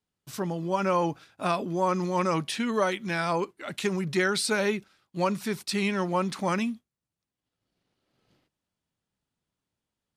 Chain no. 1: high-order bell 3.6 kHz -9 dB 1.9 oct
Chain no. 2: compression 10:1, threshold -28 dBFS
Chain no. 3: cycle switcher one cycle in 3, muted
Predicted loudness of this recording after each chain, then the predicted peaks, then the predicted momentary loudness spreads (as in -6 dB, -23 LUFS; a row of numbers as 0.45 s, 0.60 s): -28.5 LUFS, -33.0 LUFS, -30.0 LUFS; -13.0 dBFS, -18.5 dBFS, -13.0 dBFS; 7 LU, 6 LU, 7 LU